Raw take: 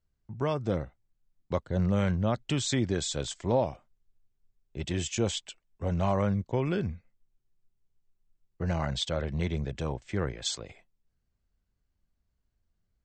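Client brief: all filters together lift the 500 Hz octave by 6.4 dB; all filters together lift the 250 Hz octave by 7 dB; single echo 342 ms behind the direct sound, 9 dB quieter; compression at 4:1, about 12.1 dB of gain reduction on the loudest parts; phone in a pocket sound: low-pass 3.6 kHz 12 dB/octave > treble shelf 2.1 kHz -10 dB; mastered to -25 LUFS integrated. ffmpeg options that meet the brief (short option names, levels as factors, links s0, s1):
-af "equalizer=f=250:t=o:g=8.5,equalizer=f=500:t=o:g=6,acompressor=threshold=0.0282:ratio=4,lowpass=3600,highshelf=f=2100:g=-10,aecho=1:1:342:0.355,volume=3.55"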